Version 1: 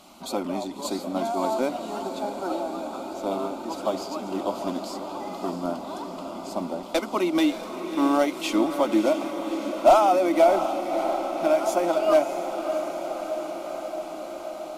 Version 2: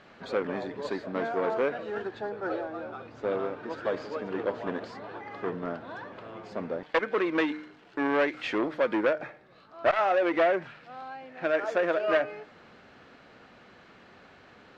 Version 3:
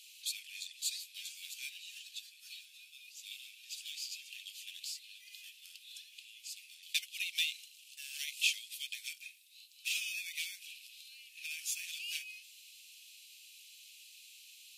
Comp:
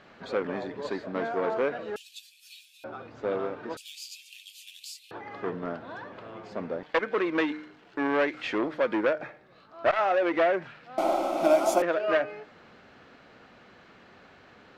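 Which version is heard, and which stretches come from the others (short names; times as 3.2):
2
1.96–2.84 from 3
3.77–5.11 from 3
10.98–11.82 from 1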